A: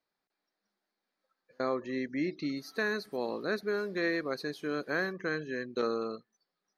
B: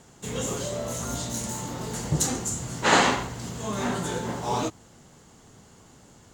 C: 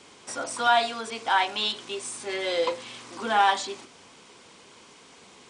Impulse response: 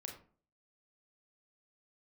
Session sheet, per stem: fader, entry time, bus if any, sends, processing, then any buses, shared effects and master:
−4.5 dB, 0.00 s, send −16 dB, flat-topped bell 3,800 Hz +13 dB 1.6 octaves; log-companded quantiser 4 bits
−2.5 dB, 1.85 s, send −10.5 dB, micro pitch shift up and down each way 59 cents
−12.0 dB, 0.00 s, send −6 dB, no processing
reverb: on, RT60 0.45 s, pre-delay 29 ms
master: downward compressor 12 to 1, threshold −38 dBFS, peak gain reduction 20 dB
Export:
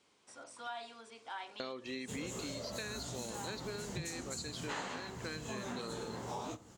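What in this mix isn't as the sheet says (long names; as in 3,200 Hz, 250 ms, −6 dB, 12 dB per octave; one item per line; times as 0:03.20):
stem A: missing log-companded quantiser 4 bits
stem C −12.0 dB → −22.0 dB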